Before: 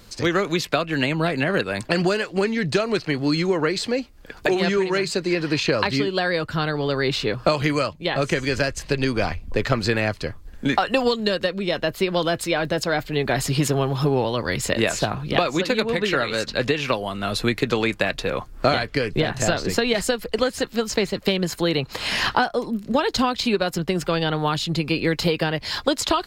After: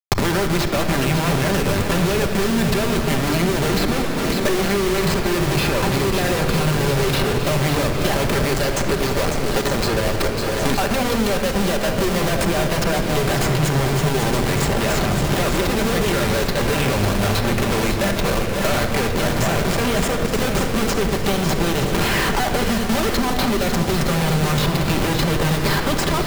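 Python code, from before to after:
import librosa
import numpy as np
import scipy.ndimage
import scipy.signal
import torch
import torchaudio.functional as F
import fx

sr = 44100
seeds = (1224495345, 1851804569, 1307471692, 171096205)

y = fx.graphic_eq(x, sr, hz=(125, 250, 500, 1000, 2000, 4000, 8000), db=(-9, -7, 4, -5, -8, 3, 9), at=(8.53, 10.71))
y = fx.schmitt(y, sr, flips_db=-27.5)
y = fx.echo_swing(y, sr, ms=912, ratio=1.5, feedback_pct=53, wet_db=-10.0)
y = fx.room_shoebox(y, sr, seeds[0], volume_m3=2300.0, walls='mixed', distance_m=1.2)
y = fx.band_squash(y, sr, depth_pct=100)
y = y * 10.0 ** (1.0 / 20.0)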